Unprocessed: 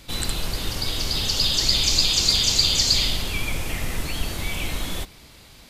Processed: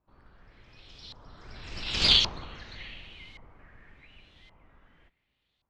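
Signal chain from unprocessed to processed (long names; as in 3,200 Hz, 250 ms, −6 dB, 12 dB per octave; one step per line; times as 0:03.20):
source passing by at 0:02.08, 37 m/s, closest 3.3 metres
tube saturation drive 14 dB, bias 0.8
auto-filter low-pass saw up 0.89 Hz 990–4,000 Hz
level +3 dB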